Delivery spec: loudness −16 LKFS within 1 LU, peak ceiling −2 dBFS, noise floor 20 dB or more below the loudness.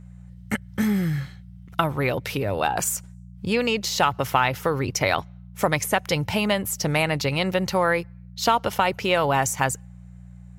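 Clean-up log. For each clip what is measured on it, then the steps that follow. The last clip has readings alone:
mains hum 60 Hz; hum harmonics up to 180 Hz; level of the hum −41 dBFS; integrated loudness −24.0 LKFS; sample peak −6.5 dBFS; target loudness −16.0 LKFS
→ hum removal 60 Hz, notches 3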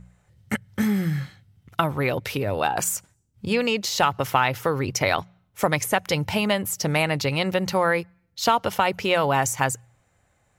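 mains hum none found; integrated loudness −24.0 LKFS; sample peak −6.5 dBFS; target loudness −16.0 LKFS
→ level +8 dB
brickwall limiter −2 dBFS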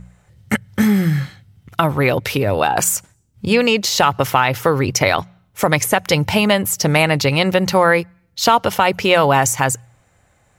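integrated loudness −16.5 LKFS; sample peak −2.0 dBFS; background noise floor −59 dBFS

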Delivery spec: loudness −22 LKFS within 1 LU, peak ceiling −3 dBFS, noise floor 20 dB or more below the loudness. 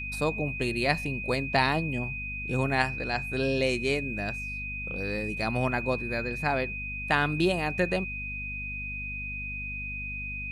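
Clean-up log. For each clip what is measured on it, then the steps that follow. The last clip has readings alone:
mains hum 50 Hz; hum harmonics up to 250 Hz; level of the hum −37 dBFS; interfering tone 2,500 Hz; level of the tone −34 dBFS; integrated loudness −29.0 LKFS; sample peak −8.5 dBFS; target loudness −22.0 LKFS
→ hum removal 50 Hz, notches 5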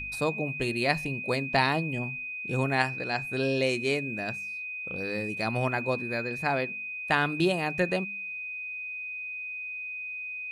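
mains hum none found; interfering tone 2,500 Hz; level of the tone −34 dBFS
→ notch filter 2,500 Hz, Q 30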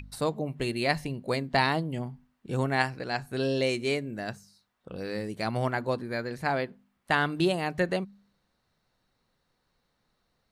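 interfering tone none found; integrated loudness −29.5 LKFS; sample peak −9.5 dBFS; target loudness −22.0 LKFS
→ level +7.5 dB
brickwall limiter −3 dBFS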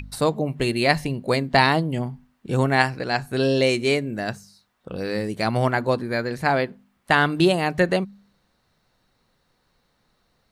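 integrated loudness −22.5 LKFS; sample peak −3.0 dBFS; background noise floor −68 dBFS

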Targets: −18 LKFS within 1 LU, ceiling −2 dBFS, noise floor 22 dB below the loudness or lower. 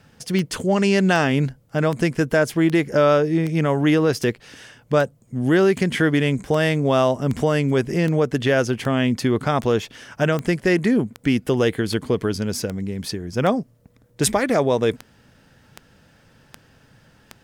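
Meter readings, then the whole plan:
number of clicks 23; integrated loudness −20.5 LKFS; sample peak −5.5 dBFS; target loudness −18.0 LKFS
→ click removal
level +2.5 dB

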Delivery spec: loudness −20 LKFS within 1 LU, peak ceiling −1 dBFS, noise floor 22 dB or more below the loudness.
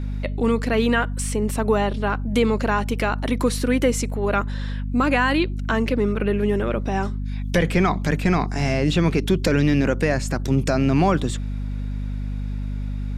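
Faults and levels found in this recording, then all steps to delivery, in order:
mains hum 50 Hz; hum harmonics up to 250 Hz; level of the hum −24 dBFS; integrated loudness −22.0 LKFS; sample peak −6.0 dBFS; target loudness −20.0 LKFS
→ hum removal 50 Hz, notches 5
level +2 dB

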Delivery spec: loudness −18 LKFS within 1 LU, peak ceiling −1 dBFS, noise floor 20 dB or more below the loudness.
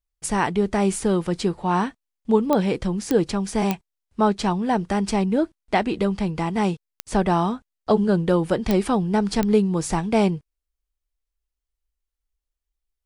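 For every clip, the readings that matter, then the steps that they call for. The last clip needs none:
number of clicks 6; integrated loudness −22.5 LKFS; sample peak −5.5 dBFS; target loudness −18.0 LKFS
→ click removal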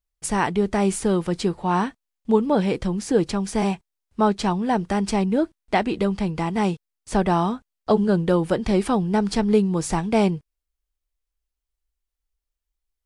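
number of clicks 0; integrated loudness −22.5 LKFS; sample peak −6.5 dBFS; target loudness −18.0 LKFS
→ level +4.5 dB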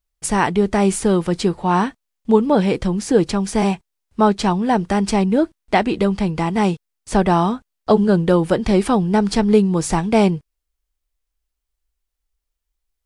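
integrated loudness −18.0 LKFS; sample peak −2.0 dBFS; background noise floor −78 dBFS

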